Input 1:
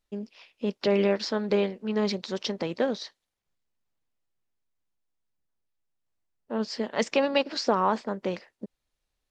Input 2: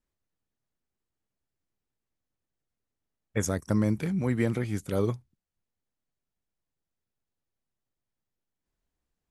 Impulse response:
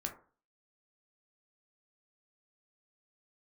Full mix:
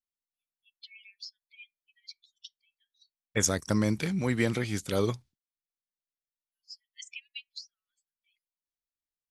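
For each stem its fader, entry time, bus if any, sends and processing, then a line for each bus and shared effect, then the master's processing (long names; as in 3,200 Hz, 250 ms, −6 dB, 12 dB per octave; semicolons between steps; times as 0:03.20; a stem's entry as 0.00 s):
−1.5 dB, 0.00 s, send −15 dB, spectral dynamics exaggerated over time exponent 3; Butterworth high-pass 2,300 Hz 72 dB per octave; downward compressor 6 to 1, threshold −39 dBFS, peak gain reduction 10.5 dB; automatic ducking −15 dB, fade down 1.40 s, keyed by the second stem
+0.5 dB, 0.00 s, no send, noise gate with hold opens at −54 dBFS; parametric band 4,400 Hz +10.5 dB 1.9 octaves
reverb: on, RT60 0.40 s, pre-delay 7 ms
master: low-shelf EQ 240 Hz −3.5 dB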